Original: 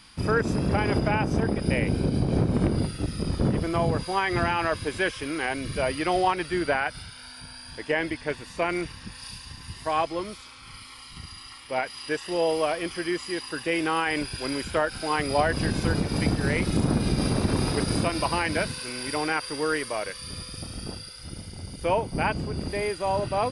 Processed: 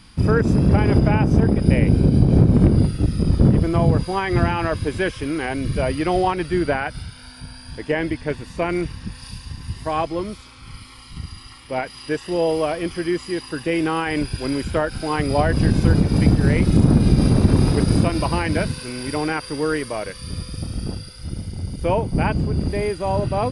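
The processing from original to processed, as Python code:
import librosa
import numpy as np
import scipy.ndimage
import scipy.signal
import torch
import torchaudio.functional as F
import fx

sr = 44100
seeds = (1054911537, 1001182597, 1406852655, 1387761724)

y = fx.low_shelf(x, sr, hz=380.0, db=12.0)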